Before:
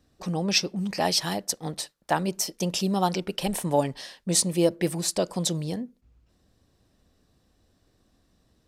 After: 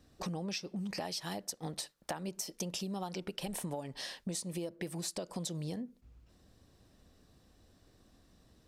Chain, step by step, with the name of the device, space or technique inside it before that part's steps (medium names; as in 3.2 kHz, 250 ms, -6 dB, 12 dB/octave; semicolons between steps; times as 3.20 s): serial compression, leveller first (compression 2.5:1, threshold -28 dBFS, peak gain reduction 8.5 dB; compression 6:1, threshold -38 dBFS, peak gain reduction 13.5 dB); trim +1.5 dB